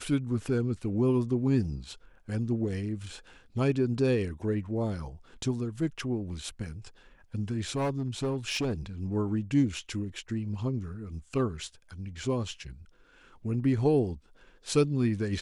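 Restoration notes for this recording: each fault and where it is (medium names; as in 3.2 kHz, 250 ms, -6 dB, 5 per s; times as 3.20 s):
7.72–8.73 s: clipped -25.5 dBFS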